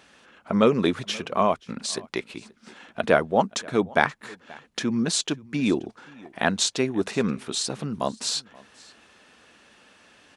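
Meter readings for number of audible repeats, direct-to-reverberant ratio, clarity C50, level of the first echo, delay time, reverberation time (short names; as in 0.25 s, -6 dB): 1, none, none, -23.5 dB, 0.529 s, none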